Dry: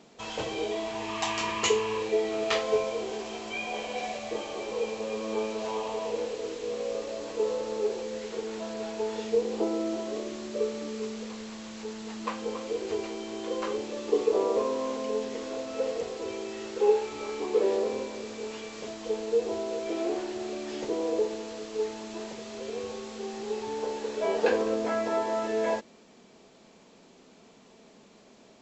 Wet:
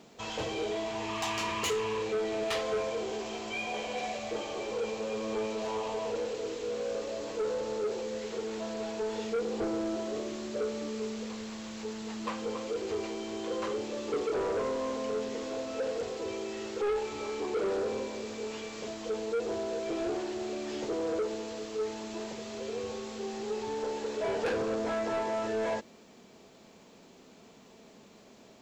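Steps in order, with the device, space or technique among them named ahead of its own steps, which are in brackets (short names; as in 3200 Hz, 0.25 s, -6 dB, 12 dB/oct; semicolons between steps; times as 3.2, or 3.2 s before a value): open-reel tape (soft clip -27 dBFS, distortion -10 dB; bell 91 Hz +4.5 dB 0.99 oct; white noise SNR 45 dB)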